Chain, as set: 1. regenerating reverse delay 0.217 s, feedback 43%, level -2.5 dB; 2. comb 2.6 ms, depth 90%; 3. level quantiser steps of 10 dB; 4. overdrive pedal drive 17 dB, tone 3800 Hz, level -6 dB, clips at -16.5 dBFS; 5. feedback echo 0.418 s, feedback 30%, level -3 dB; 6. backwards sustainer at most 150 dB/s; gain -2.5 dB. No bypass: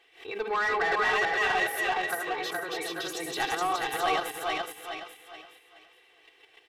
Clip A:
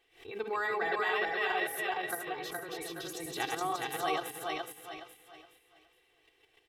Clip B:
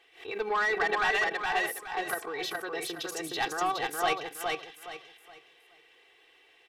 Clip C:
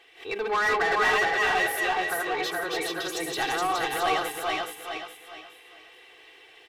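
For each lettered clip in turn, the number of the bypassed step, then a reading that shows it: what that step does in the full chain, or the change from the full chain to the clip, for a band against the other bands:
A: 4, crest factor change +3.5 dB; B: 1, momentary loudness spread change -4 LU; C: 3, loudness change +2.5 LU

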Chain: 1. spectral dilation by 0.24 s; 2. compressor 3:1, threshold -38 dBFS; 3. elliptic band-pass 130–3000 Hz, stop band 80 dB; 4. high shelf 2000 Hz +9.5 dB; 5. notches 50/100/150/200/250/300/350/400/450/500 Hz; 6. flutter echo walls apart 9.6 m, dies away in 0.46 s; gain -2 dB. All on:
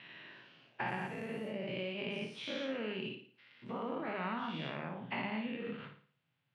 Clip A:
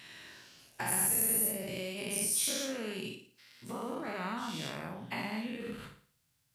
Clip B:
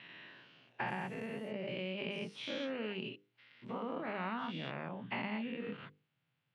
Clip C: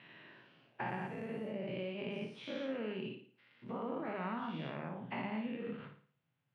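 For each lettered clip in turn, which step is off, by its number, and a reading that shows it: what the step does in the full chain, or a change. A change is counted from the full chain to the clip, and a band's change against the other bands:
3, crest factor change +5.0 dB; 6, echo-to-direct -6.5 dB to none; 4, 4 kHz band -6.0 dB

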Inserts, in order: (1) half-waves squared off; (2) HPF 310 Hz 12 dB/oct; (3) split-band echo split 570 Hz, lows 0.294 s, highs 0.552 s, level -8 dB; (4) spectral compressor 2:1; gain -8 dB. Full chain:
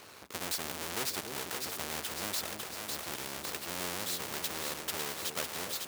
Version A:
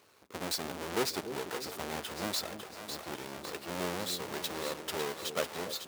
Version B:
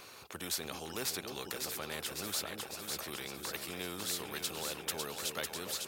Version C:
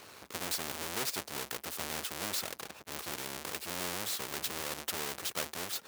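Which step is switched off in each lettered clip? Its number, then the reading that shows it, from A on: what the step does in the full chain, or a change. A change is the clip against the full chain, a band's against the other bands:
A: 4, 8 kHz band -6.0 dB; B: 1, distortion -4 dB; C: 3, momentary loudness spread change +2 LU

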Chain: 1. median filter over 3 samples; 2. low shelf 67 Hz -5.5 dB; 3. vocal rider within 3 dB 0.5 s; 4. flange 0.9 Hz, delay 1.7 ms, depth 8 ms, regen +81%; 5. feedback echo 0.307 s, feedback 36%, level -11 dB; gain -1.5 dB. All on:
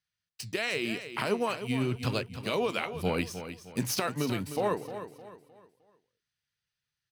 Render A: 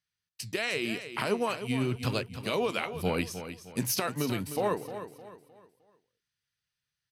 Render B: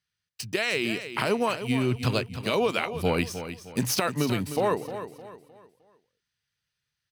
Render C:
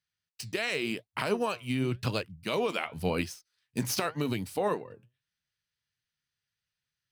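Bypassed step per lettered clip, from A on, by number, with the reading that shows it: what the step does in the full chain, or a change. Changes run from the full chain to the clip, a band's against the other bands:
1, 8 kHz band +2.0 dB; 4, loudness change +4.5 LU; 5, momentary loudness spread change -4 LU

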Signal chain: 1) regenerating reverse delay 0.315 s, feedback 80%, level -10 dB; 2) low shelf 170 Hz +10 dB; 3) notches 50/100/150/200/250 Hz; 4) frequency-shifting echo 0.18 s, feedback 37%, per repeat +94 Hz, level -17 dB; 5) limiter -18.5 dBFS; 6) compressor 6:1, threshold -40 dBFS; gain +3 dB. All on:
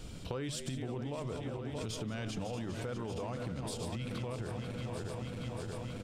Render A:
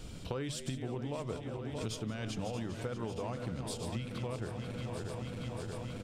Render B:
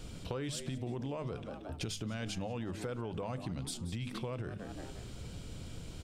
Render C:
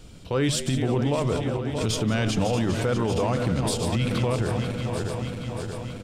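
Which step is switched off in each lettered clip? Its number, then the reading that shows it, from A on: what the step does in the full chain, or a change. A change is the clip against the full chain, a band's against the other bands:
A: 5, mean gain reduction 2.0 dB; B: 1, 8 kHz band +2.0 dB; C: 6, mean gain reduction 12.0 dB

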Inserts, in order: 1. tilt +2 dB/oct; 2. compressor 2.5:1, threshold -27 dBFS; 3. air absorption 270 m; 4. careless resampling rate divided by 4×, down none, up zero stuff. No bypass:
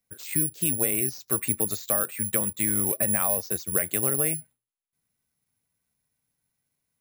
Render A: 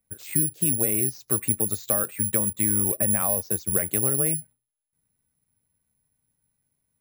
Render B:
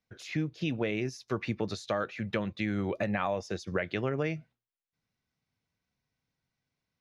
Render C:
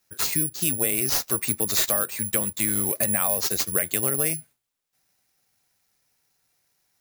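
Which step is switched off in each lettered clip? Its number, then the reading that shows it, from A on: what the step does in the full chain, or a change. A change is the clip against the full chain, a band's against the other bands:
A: 1, 4 kHz band -5.5 dB; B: 4, 8 kHz band -28.0 dB; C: 3, 4 kHz band +11.0 dB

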